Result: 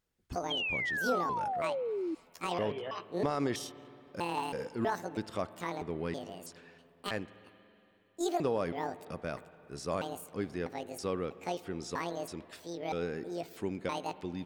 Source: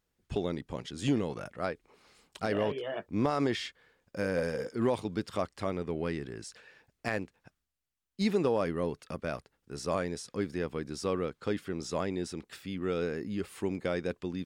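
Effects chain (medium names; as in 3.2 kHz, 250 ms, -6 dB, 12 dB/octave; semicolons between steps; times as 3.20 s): pitch shift switched off and on +9.5 st, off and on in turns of 323 ms; spring tank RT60 3.2 s, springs 47/56 ms, chirp 55 ms, DRR 15.5 dB; painted sound fall, 0.50–2.15 s, 310–3300 Hz -31 dBFS; trim -3 dB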